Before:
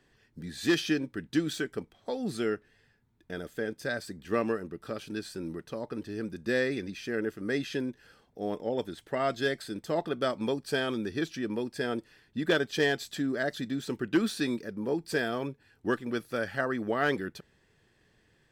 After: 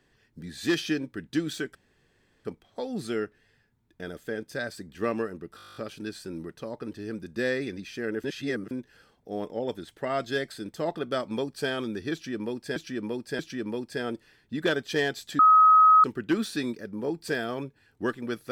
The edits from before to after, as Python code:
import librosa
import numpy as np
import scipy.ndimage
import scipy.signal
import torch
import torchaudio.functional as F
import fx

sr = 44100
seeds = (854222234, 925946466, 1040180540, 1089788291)

y = fx.edit(x, sr, fx.insert_room_tone(at_s=1.75, length_s=0.7),
    fx.stutter(start_s=4.86, slice_s=0.02, count=11),
    fx.reverse_span(start_s=7.34, length_s=0.47),
    fx.repeat(start_s=11.23, length_s=0.63, count=3),
    fx.bleep(start_s=13.23, length_s=0.65, hz=1270.0, db=-13.0), tone=tone)